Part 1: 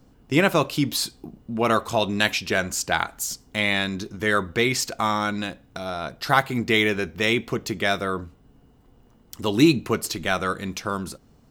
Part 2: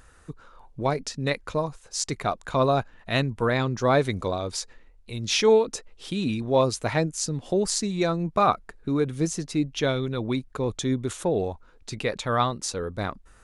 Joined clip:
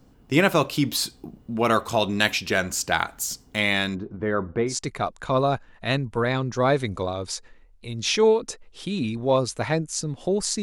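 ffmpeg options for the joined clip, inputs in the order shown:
ffmpeg -i cue0.wav -i cue1.wav -filter_complex "[0:a]asplit=3[link_01][link_02][link_03];[link_01]afade=type=out:start_time=3.94:duration=0.02[link_04];[link_02]lowpass=1000,afade=type=in:start_time=3.94:duration=0.02,afade=type=out:start_time=4.78:duration=0.02[link_05];[link_03]afade=type=in:start_time=4.78:duration=0.02[link_06];[link_04][link_05][link_06]amix=inputs=3:normalize=0,apad=whole_dur=10.62,atrim=end=10.62,atrim=end=4.78,asetpts=PTS-STARTPTS[link_07];[1:a]atrim=start=1.87:end=7.87,asetpts=PTS-STARTPTS[link_08];[link_07][link_08]acrossfade=duration=0.16:curve1=tri:curve2=tri" out.wav

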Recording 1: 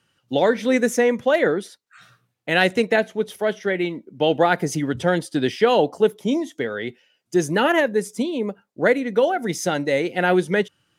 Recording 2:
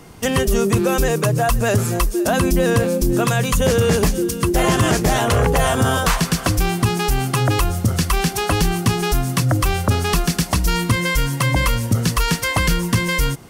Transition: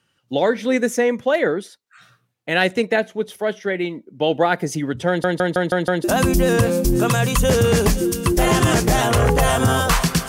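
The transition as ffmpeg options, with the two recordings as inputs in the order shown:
ffmpeg -i cue0.wav -i cue1.wav -filter_complex "[0:a]apad=whole_dur=10.28,atrim=end=10.28,asplit=6[link_01][link_02][link_03][link_04][link_05][link_06];[link_01]atrim=end=5.242[link_07];[link_02]atrim=start=5.078:end=5.242[link_08];[link_03]atrim=start=5.078:end=5.242[link_09];[link_04]atrim=start=5.078:end=5.242[link_10];[link_05]atrim=start=5.078:end=5.242[link_11];[link_06]atrim=start=5.078:end=5.242[link_12];[1:a]atrim=start=2.208:end=6.45[link_13];[link_07][link_08]acrossfade=duration=0.004:curve1=hsin:curve2=hsin[link_14];[link_14][link_09]acrossfade=duration=0.004:curve1=hsin:curve2=hsin[link_15];[link_15][link_10]acrossfade=duration=0.004:curve1=hsin:curve2=hsin[link_16];[link_16][link_11]acrossfade=duration=0.004:curve1=hsin:curve2=hsin[link_17];[link_17][link_12]acrossfade=duration=0.004:curve1=hsin:curve2=hsin[link_18];[link_18][link_13]acrossfade=duration=0.004:curve1=hsin:curve2=hsin" out.wav

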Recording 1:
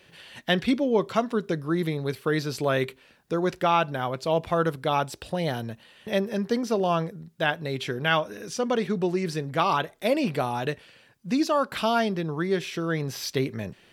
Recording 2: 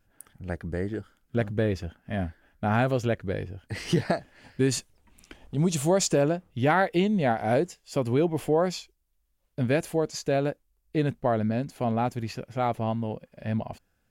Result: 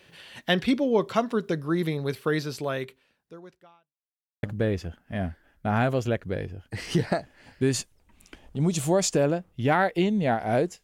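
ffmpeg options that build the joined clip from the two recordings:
ffmpeg -i cue0.wav -i cue1.wav -filter_complex "[0:a]apad=whole_dur=10.83,atrim=end=10.83,asplit=2[link_01][link_02];[link_01]atrim=end=3.94,asetpts=PTS-STARTPTS,afade=type=out:start_time=2.27:duration=1.67:curve=qua[link_03];[link_02]atrim=start=3.94:end=4.43,asetpts=PTS-STARTPTS,volume=0[link_04];[1:a]atrim=start=1.41:end=7.81,asetpts=PTS-STARTPTS,afade=type=in:duration=0.004:curve=hsin[link_05];[link_03][link_04][link_05]concat=n=3:v=0:a=1" out.wav

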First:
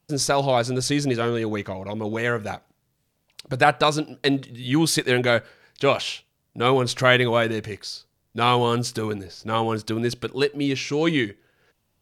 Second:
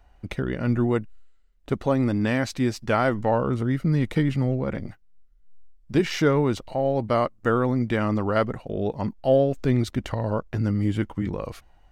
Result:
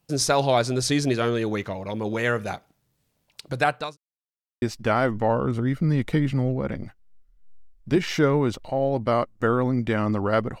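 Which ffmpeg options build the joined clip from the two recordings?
ffmpeg -i cue0.wav -i cue1.wav -filter_complex "[0:a]apad=whole_dur=10.6,atrim=end=10.6,asplit=2[link_01][link_02];[link_01]atrim=end=3.97,asetpts=PTS-STARTPTS,afade=type=out:start_time=3.18:duration=0.79:curve=qsin[link_03];[link_02]atrim=start=3.97:end=4.62,asetpts=PTS-STARTPTS,volume=0[link_04];[1:a]atrim=start=2.65:end=8.63,asetpts=PTS-STARTPTS,afade=type=in:duration=0.004:curve=hsin[link_05];[link_03][link_04][link_05]concat=n=3:v=0:a=1" out.wav

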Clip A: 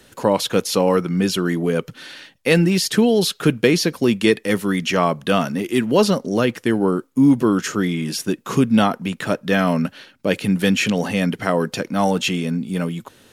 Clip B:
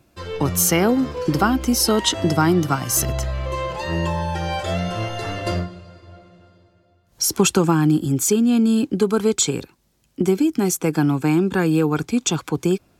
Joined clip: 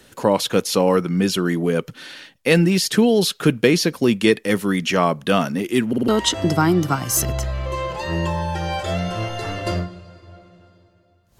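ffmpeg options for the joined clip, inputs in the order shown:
ffmpeg -i cue0.wav -i cue1.wav -filter_complex "[0:a]apad=whole_dur=11.39,atrim=end=11.39,asplit=4[link_01][link_02][link_03][link_04];[link_01]atrim=end=5.932[link_05];[link_02]atrim=start=5.878:end=5.932[link_06];[link_03]atrim=start=5.878:end=5.932[link_07];[link_04]atrim=start=5.878:end=5.932[link_08];[1:a]atrim=start=1.878:end=7.19[link_09];[link_05][link_06]acrossfade=duration=0.004:curve1=hsin:curve2=hsin[link_10];[link_10][link_07]acrossfade=duration=0.004:curve1=hsin:curve2=hsin[link_11];[link_11][link_08]acrossfade=duration=0.004:curve1=hsin:curve2=hsin[link_12];[link_12][link_09]acrossfade=duration=0.004:curve1=hsin:curve2=hsin" out.wav

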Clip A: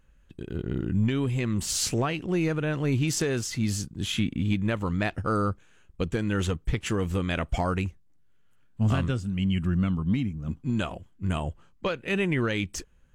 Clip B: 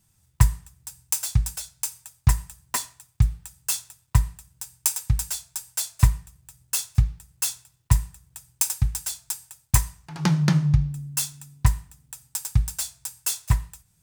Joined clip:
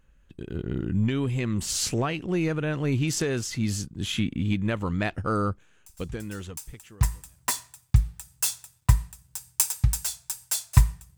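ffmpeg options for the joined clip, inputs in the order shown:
ffmpeg -i cue0.wav -i cue1.wav -filter_complex "[0:a]apad=whole_dur=11.17,atrim=end=11.17,atrim=end=7.5,asetpts=PTS-STARTPTS[link_01];[1:a]atrim=start=0.76:end=6.43,asetpts=PTS-STARTPTS[link_02];[link_01][link_02]acrossfade=duration=2:curve1=qua:curve2=qua" out.wav

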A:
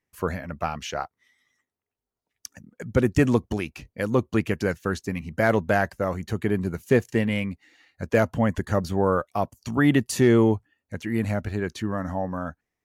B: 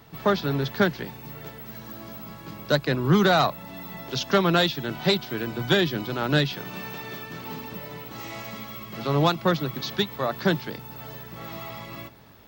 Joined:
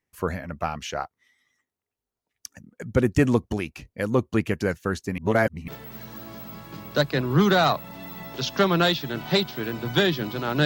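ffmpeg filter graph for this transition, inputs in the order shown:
ffmpeg -i cue0.wav -i cue1.wav -filter_complex "[0:a]apad=whole_dur=10.65,atrim=end=10.65,asplit=2[link_01][link_02];[link_01]atrim=end=5.182[link_03];[link_02]atrim=start=5.178:end=5.682,asetpts=PTS-STARTPTS,areverse[link_04];[1:a]atrim=start=1.418:end=6.39[link_05];[link_03][link_04]acrossfade=duration=0.004:curve1=hsin:curve2=hsin[link_06];[link_06][link_05]acrossfade=duration=0.004:curve1=hsin:curve2=hsin" out.wav

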